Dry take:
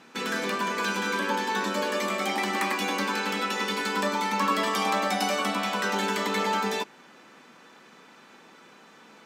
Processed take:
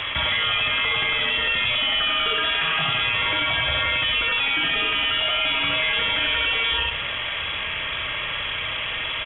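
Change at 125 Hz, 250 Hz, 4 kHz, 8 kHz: no reading, -8.0 dB, +13.5 dB, under -40 dB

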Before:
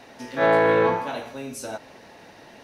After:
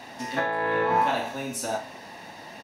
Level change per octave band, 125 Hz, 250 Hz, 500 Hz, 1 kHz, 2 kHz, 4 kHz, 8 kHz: -5.5 dB, -4.5 dB, -7.5 dB, +0.5 dB, -1.5 dB, +2.5 dB, +5.0 dB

